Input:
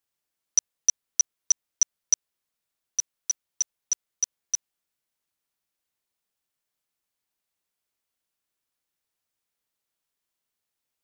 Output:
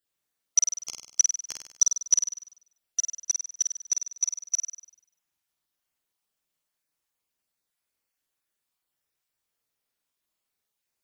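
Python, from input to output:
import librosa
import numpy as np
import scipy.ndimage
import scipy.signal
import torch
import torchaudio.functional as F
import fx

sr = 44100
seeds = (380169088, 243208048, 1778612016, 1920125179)

y = fx.spec_dropout(x, sr, seeds[0], share_pct=20)
y = fx.room_flutter(y, sr, wall_m=8.4, rt60_s=0.66)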